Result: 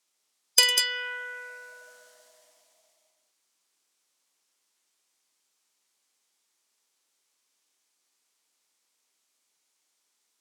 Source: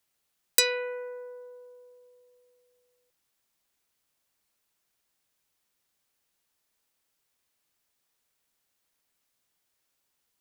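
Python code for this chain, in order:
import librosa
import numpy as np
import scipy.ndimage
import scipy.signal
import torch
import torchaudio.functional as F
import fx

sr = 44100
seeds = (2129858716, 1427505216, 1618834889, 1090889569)

p1 = scipy.signal.sosfilt(scipy.signal.cheby1(2, 1.0, [300.0, 5700.0], 'bandpass', fs=sr, output='sos'), x)
p2 = fx.high_shelf(p1, sr, hz=4300.0, db=9.5)
p3 = fx.formant_shift(p2, sr, semitones=4)
p4 = p3 + fx.echo_multitap(p3, sr, ms=(40, 48, 105, 195, 208), db=(-20.0, -11.5, -14.0, -6.0, -14.0), dry=0)
y = F.gain(torch.from_numpy(p4), 1.5).numpy()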